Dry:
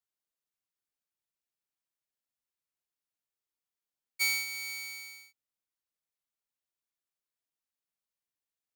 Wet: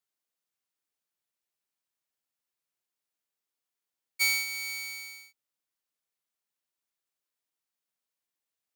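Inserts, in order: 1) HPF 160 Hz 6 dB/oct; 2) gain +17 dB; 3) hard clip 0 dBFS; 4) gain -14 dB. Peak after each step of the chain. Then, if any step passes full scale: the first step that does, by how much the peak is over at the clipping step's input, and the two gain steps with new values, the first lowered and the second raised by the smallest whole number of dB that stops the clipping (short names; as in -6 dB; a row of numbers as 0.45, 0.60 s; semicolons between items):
-21.0, -4.0, -4.0, -18.0 dBFS; no overload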